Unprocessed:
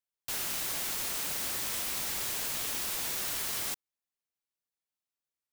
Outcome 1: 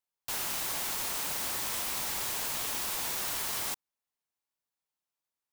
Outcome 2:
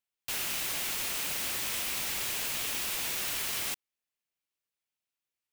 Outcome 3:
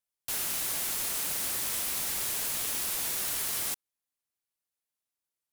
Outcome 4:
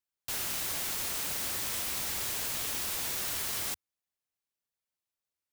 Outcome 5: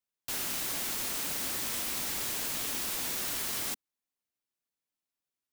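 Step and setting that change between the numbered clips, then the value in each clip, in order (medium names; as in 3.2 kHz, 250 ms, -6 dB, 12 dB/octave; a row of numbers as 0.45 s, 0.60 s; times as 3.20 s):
peaking EQ, frequency: 920 Hz, 2.6 kHz, 11 kHz, 82 Hz, 260 Hz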